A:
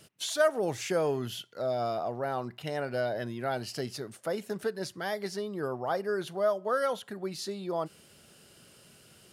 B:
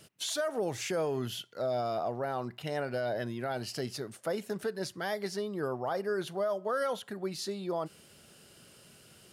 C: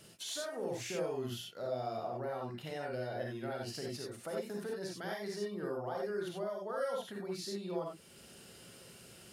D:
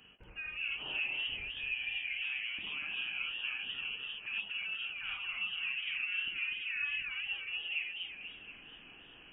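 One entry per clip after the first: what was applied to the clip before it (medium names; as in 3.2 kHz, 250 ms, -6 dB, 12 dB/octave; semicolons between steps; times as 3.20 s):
peak limiter -23.5 dBFS, peak gain reduction 10.5 dB
compression 1.5:1, threshold -53 dBFS, peak gain reduction 9 dB; reverberation, pre-delay 33 ms, DRR -1.5 dB; trim -1.5 dB
dynamic bell 1.8 kHz, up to -4 dB, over -55 dBFS, Q 0.74; frequency inversion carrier 3.1 kHz; modulated delay 241 ms, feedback 54%, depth 199 cents, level -5.5 dB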